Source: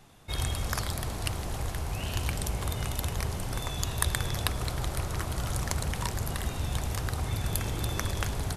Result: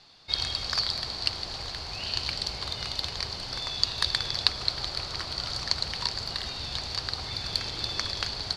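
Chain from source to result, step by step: low shelf 360 Hz -10 dB; modulation noise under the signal 11 dB; synth low-pass 4500 Hz, resonance Q 11; gain -1 dB

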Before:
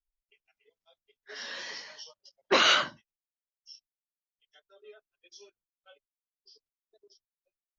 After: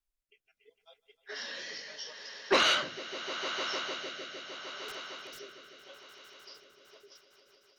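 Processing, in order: low shelf 170 Hz -2.5 dB; in parallel at +0.5 dB: compressor, threshold -41 dBFS, peak gain reduction 20.5 dB; 4.88–5.4 on the sum: wrapped overs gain 41 dB; on a send: swelling echo 0.152 s, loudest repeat 5, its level -16 dB; on the sum: soft clip -12.5 dBFS, distortion -21 dB; rotary speaker horn 0.75 Hz, later 6.7 Hz, at 6.5

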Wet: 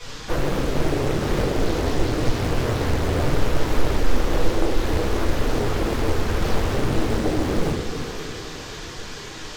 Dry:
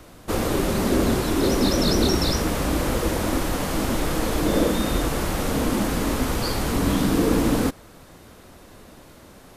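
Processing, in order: band shelf 6900 Hz -9.5 dB; compressor 6:1, threshold -27 dBFS, peak gain reduction 11.5 dB; formant-preserving pitch shift +8.5 st; flange 0.85 Hz, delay 8.5 ms, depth 3.2 ms, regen +81%; band noise 780–6800 Hz -49 dBFS; on a send: split-band echo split 390 Hz, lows 0.291 s, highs 0.532 s, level -8 dB; on the sum: shoebox room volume 38 m³, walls mixed, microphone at 1.8 m; Doppler distortion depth 1 ms

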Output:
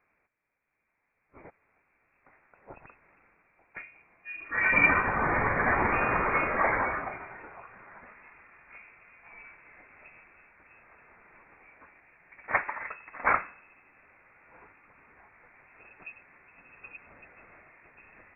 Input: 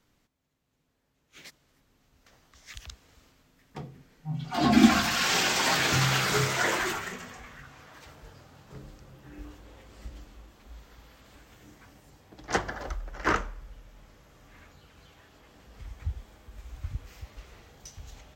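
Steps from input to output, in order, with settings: HPF 570 Hz 6 dB/oct; inverted band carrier 2600 Hz; gain +3 dB

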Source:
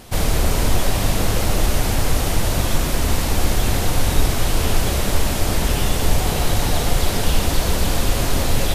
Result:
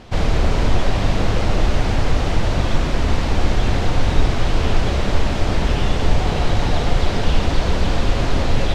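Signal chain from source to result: air absorption 150 m; gain +1.5 dB

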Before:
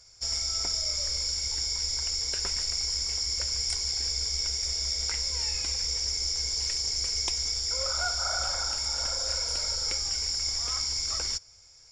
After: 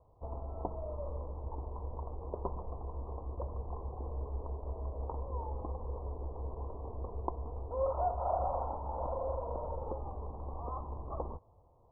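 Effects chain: steep low-pass 1100 Hz 96 dB/oct; low shelf 92 Hz -7.5 dB; gain +7 dB

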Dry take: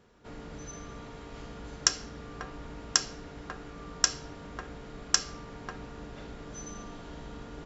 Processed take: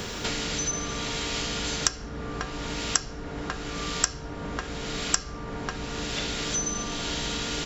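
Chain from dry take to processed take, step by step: three-band squash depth 100%; gain +7.5 dB

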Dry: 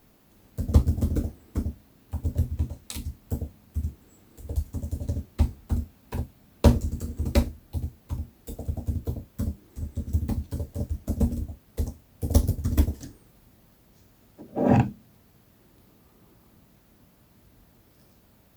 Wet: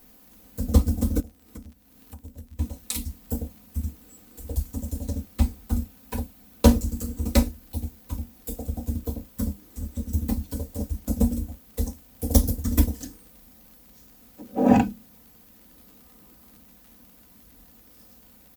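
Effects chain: high shelf 6100 Hz +9.5 dB; comb 4 ms, depth 75%; 1.2–2.59 compressor 4:1, threshold -42 dBFS, peak gain reduction 19 dB; crackle 47/s -43 dBFS

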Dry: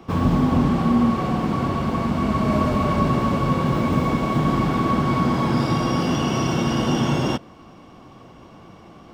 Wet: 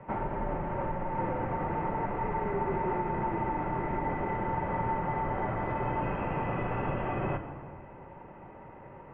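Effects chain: low shelf 320 Hz -6 dB; compressor 4:1, threshold -26 dBFS, peak gain reduction 8 dB; shoebox room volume 3700 m³, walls mixed, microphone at 1.2 m; mistuned SSB -220 Hz 310–2300 Hz

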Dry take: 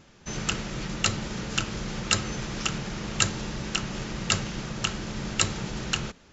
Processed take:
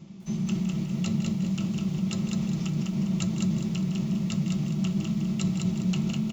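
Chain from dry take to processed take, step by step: bell 1600 Hz -15 dB 0.33 oct; echo 0.16 s -12.5 dB; on a send at -4 dB: reverb RT60 0.15 s, pre-delay 3 ms; on the sum: reverse; compressor 8:1, threshold -21 dBFS, peak gain reduction 12.5 dB; reverse; lo-fi delay 0.202 s, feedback 35%, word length 9-bit, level -3 dB; gain -3.5 dB

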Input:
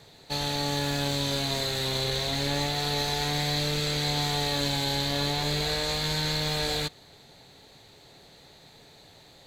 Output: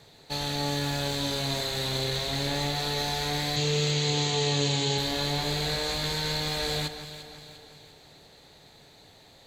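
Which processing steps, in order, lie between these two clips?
3.56–4.98 speaker cabinet 100–7300 Hz, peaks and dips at 130 Hz +10 dB, 430 Hz +8 dB, 630 Hz -5 dB, 1500 Hz -5 dB, 2900 Hz +6 dB, 6900 Hz +10 dB; on a send: echo with dull and thin repeats by turns 0.174 s, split 2000 Hz, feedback 70%, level -9 dB; on the sum: gain -1.5 dB

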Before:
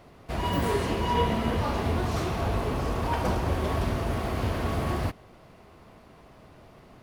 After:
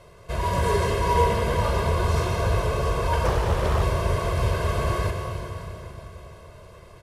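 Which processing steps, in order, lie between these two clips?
CVSD 64 kbps; comb 1.9 ms, depth 90%; reverb RT60 3.7 s, pre-delay 0.1 s, DRR 4 dB; 3.25–3.83 Doppler distortion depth 0.57 ms

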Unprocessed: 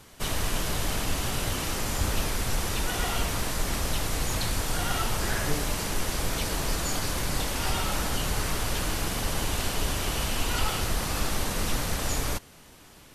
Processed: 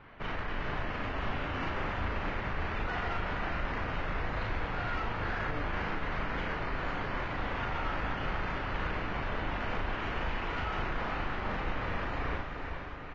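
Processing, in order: LPF 2100 Hz 24 dB/oct; tilt shelf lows -4 dB, about 930 Hz; limiter -26.5 dBFS, peak gain reduction 10 dB; soft clip -30 dBFS, distortion -18 dB; doubler 38 ms -3 dB; diffused feedback echo 0.456 s, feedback 58%, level -5.5 dB; Vorbis 32 kbps 16000 Hz

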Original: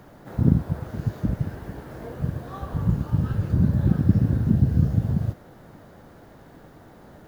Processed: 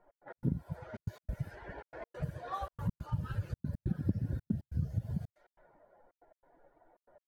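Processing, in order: per-bin expansion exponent 2; compressor 3:1, threshold -42 dBFS, peak gain reduction 20.5 dB; low-pass opened by the level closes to 780 Hz, open at -40 dBFS; step gate "x.x.xxxx" 140 bpm -60 dB; gain +7 dB

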